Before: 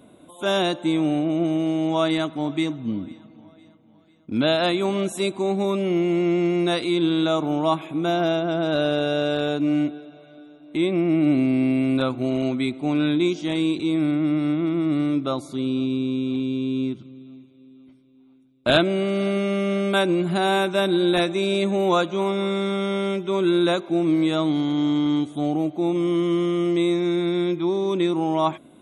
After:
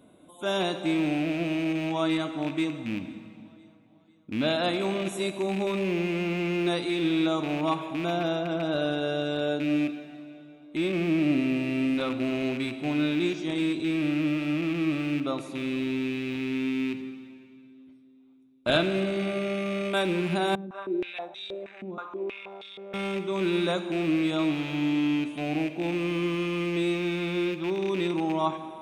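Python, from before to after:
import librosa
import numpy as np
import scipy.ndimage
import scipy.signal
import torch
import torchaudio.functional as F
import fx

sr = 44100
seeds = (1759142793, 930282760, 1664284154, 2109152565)

y = fx.rattle_buzz(x, sr, strikes_db=-27.0, level_db=-21.0)
y = fx.rev_plate(y, sr, seeds[0], rt60_s=2.2, hf_ratio=0.85, predelay_ms=0, drr_db=8.0)
y = fx.filter_held_bandpass(y, sr, hz=6.3, low_hz=240.0, high_hz=3700.0, at=(20.55, 22.94))
y = y * 10.0 ** (-6.0 / 20.0)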